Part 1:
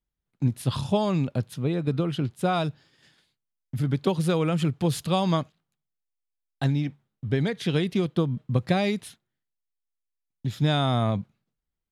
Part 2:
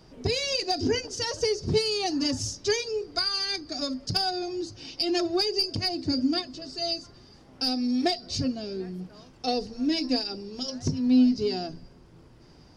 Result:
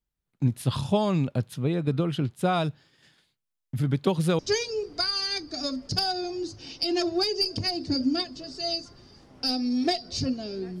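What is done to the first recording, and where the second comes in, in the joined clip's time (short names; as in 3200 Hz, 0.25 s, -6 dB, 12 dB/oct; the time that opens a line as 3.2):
part 1
4.39 switch to part 2 from 2.57 s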